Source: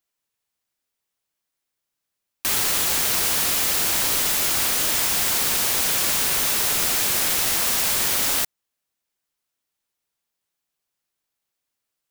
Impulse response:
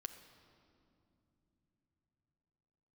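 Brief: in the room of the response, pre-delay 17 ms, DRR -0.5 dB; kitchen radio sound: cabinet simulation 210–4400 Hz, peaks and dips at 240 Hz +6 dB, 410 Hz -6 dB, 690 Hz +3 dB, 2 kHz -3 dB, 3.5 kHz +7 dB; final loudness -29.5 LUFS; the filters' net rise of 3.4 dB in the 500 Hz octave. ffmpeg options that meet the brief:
-filter_complex "[0:a]equalizer=f=500:t=o:g=5,asplit=2[s0][s1];[1:a]atrim=start_sample=2205,adelay=17[s2];[s1][s2]afir=irnorm=-1:irlink=0,volume=1.68[s3];[s0][s3]amix=inputs=2:normalize=0,highpass=210,equalizer=f=240:t=q:w=4:g=6,equalizer=f=410:t=q:w=4:g=-6,equalizer=f=690:t=q:w=4:g=3,equalizer=f=2000:t=q:w=4:g=-3,equalizer=f=3500:t=q:w=4:g=7,lowpass=f=4400:w=0.5412,lowpass=f=4400:w=1.3066,volume=0.376"

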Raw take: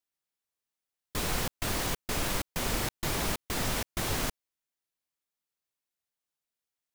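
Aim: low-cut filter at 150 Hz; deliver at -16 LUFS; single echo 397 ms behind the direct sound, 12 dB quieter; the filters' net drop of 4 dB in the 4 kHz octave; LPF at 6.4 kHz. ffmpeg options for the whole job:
-af "highpass=150,lowpass=6400,equalizer=f=4000:t=o:g=-4.5,aecho=1:1:397:0.251,volume=8.91"

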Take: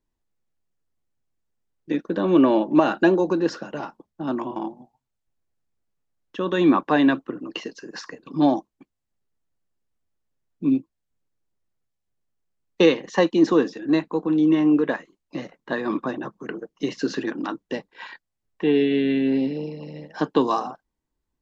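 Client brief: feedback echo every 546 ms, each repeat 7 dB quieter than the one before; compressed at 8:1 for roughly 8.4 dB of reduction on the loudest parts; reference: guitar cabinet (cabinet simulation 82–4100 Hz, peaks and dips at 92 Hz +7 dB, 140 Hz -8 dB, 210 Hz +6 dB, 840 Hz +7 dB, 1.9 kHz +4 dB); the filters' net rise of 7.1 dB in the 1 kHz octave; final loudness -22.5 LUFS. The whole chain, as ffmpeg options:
-af "equalizer=f=1000:t=o:g=4,acompressor=threshold=0.1:ratio=8,highpass=82,equalizer=f=92:t=q:w=4:g=7,equalizer=f=140:t=q:w=4:g=-8,equalizer=f=210:t=q:w=4:g=6,equalizer=f=840:t=q:w=4:g=7,equalizer=f=1900:t=q:w=4:g=4,lowpass=f=4100:w=0.5412,lowpass=f=4100:w=1.3066,aecho=1:1:546|1092|1638|2184|2730:0.447|0.201|0.0905|0.0407|0.0183,volume=1.5"

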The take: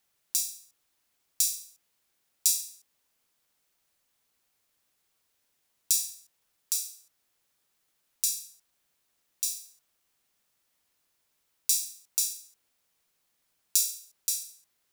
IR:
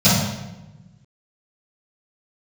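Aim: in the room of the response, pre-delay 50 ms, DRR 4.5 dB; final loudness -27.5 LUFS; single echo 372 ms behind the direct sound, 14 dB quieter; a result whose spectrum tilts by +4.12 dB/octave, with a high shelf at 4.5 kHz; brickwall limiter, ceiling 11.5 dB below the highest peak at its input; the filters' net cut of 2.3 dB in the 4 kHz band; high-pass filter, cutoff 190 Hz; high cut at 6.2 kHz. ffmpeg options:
-filter_complex "[0:a]highpass=190,lowpass=6200,equalizer=f=4000:t=o:g=-7.5,highshelf=f=4500:g=7.5,alimiter=limit=0.112:level=0:latency=1,aecho=1:1:372:0.2,asplit=2[s0][s1];[1:a]atrim=start_sample=2205,adelay=50[s2];[s1][s2]afir=irnorm=-1:irlink=0,volume=0.0447[s3];[s0][s3]amix=inputs=2:normalize=0,volume=2.51"

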